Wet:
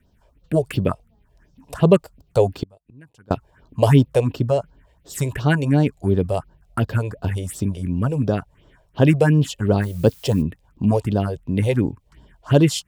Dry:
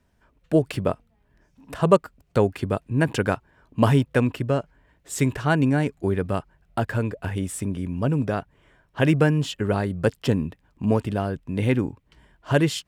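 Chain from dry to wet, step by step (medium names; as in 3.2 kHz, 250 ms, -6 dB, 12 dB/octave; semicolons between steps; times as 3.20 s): phase shifter stages 4, 2.8 Hz, lowest notch 220–2200 Hz; 2.63–3.31 s: inverted gate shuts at -29 dBFS, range -30 dB; 9.81–10.41 s: added noise blue -54 dBFS; trim +5.5 dB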